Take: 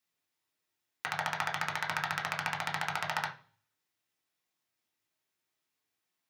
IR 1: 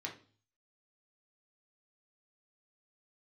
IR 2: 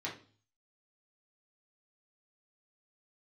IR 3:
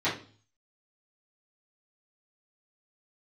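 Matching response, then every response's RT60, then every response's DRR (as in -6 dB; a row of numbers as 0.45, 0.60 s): 1; 0.40, 0.40, 0.40 s; -1.0, -5.0, -12.0 dB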